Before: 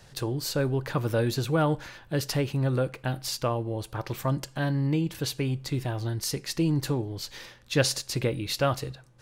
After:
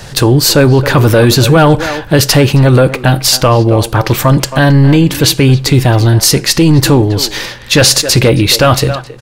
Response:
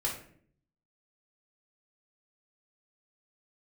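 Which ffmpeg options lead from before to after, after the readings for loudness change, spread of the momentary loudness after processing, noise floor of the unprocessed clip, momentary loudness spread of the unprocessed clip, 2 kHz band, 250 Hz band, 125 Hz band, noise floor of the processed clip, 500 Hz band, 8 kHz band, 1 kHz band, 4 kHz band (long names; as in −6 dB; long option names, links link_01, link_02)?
+20.0 dB, 5 LU, −54 dBFS, 8 LU, +20.5 dB, +19.5 dB, +20.0 dB, −29 dBFS, +19.0 dB, +22.5 dB, +19.5 dB, +22.0 dB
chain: -filter_complex "[0:a]asplit=2[link_01][link_02];[link_02]adelay=270,highpass=300,lowpass=3400,asoftclip=type=hard:threshold=-20.5dB,volume=-15dB[link_03];[link_01][link_03]amix=inputs=2:normalize=0,apsyclip=25.5dB,volume=-2dB"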